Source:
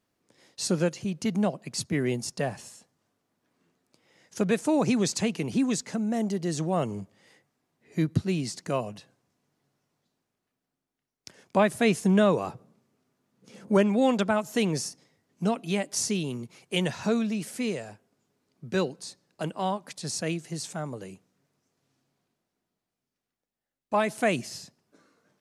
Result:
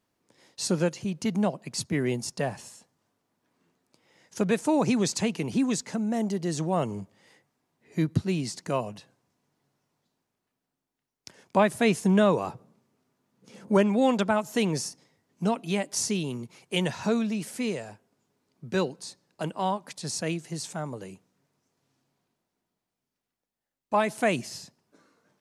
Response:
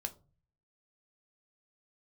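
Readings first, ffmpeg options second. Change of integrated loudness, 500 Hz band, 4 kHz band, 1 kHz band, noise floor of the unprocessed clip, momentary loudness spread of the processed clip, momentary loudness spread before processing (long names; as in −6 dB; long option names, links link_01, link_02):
0.0 dB, 0.0 dB, 0.0 dB, +1.5 dB, below −85 dBFS, 14 LU, 14 LU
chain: -af "equalizer=frequency=930:width_type=o:width=0.27:gain=4"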